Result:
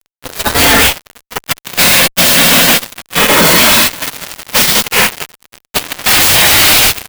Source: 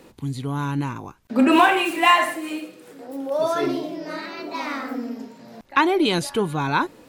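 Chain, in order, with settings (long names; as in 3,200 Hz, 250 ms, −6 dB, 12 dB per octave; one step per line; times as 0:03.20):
phase-vocoder pitch shift without resampling +3.5 semitones
high-shelf EQ 8,200 Hz −6 dB
mains-hum notches 50/100/150/200/250/300/350/400 Hz
single-tap delay 597 ms −14 dB
comb and all-pass reverb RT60 3.9 s, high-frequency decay 0.9×, pre-delay 15 ms, DRR 7 dB
gate on every frequency bin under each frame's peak −25 dB weak
compressor whose output falls as the input rises −42 dBFS, ratio −0.5
dynamic equaliser 1,200 Hz, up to −6 dB, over −59 dBFS, Q 1.2
noise gate −46 dBFS, range −14 dB
fuzz pedal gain 58 dB, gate −59 dBFS
converter with an unsteady clock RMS 0.041 ms
level +8 dB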